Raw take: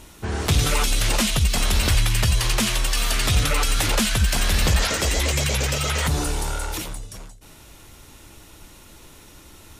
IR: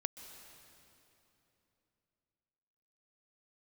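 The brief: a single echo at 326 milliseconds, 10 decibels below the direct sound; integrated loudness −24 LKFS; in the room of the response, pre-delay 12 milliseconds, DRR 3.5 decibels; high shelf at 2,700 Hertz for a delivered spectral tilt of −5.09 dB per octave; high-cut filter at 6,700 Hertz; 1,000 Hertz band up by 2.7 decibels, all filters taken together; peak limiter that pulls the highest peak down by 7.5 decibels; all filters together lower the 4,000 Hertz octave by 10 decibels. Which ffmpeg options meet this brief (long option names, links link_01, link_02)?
-filter_complex "[0:a]lowpass=6700,equalizer=frequency=1000:width_type=o:gain=5,highshelf=frequency=2700:gain=-6,equalizer=frequency=4000:width_type=o:gain=-8,alimiter=limit=-17dB:level=0:latency=1,aecho=1:1:326:0.316,asplit=2[link_01][link_02];[1:a]atrim=start_sample=2205,adelay=12[link_03];[link_02][link_03]afir=irnorm=-1:irlink=0,volume=-3dB[link_04];[link_01][link_04]amix=inputs=2:normalize=0,volume=1.5dB"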